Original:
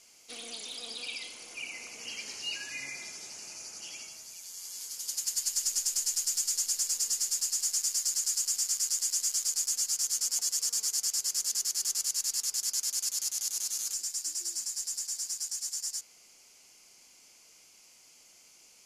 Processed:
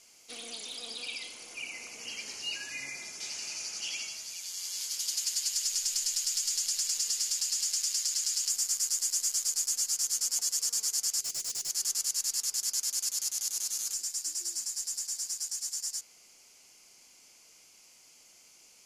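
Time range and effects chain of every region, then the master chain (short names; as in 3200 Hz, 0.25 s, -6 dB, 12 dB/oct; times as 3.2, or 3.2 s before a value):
3.2–8.5 bell 3300 Hz +10 dB 2 oct + compressor 4:1, threshold -26 dBFS
11.21–11.7 Butterworth band-stop 970 Hz, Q 0.76 + overloaded stage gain 30 dB
whole clip: dry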